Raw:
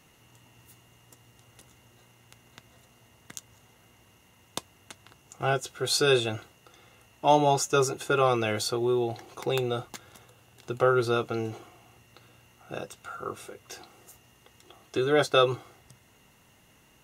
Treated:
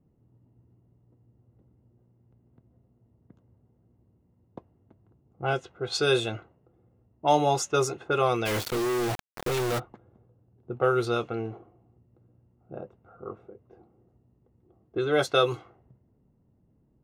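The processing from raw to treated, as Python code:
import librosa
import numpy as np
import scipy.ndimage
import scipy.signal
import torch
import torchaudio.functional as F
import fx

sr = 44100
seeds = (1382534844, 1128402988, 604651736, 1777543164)

y = fx.env_lowpass(x, sr, base_hz=310.0, full_db=-19.5)
y = fx.quant_companded(y, sr, bits=2, at=(8.45, 9.78), fade=0.02)
y = F.gain(torch.from_numpy(y), -1.0).numpy()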